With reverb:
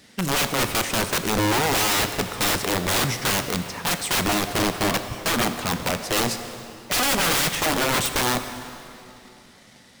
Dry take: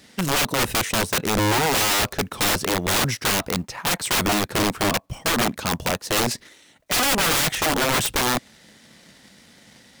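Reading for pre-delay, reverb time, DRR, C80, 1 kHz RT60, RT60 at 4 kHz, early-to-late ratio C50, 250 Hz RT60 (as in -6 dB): 15 ms, 2.9 s, 8.0 dB, 9.5 dB, 2.9 s, 2.3 s, 9.0 dB, 3.0 s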